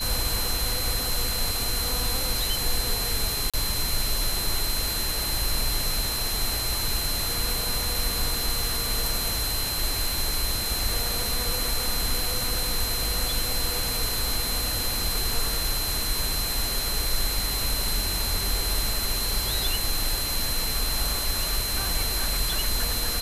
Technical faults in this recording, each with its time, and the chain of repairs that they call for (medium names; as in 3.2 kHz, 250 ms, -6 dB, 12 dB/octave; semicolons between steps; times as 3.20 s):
whine 4.1 kHz -30 dBFS
3.50–3.54 s: dropout 36 ms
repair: band-stop 4.1 kHz, Q 30; interpolate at 3.50 s, 36 ms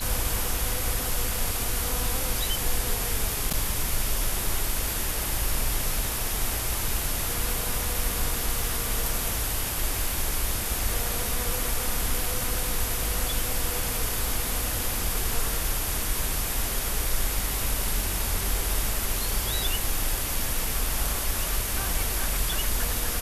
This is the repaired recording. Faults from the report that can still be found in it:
nothing left